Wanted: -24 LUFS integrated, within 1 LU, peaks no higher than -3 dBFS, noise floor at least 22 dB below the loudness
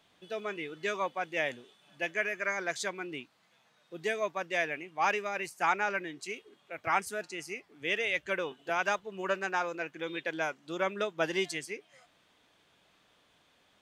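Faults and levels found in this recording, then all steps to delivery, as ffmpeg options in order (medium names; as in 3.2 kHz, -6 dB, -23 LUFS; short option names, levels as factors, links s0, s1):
loudness -33.5 LUFS; peak level -13.5 dBFS; loudness target -24.0 LUFS
-> -af "volume=2.99"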